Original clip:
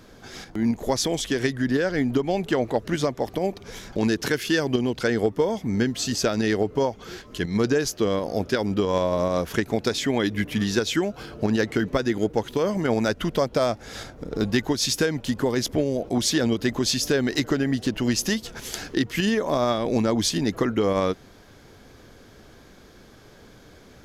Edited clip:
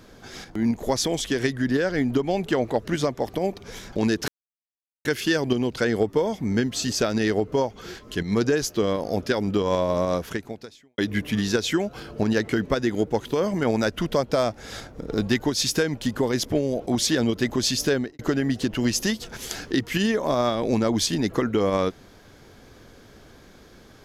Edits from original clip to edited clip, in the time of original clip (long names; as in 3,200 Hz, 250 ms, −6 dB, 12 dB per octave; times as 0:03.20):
0:04.28: splice in silence 0.77 s
0:09.35–0:10.21: fade out quadratic
0:17.15–0:17.42: fade out and dull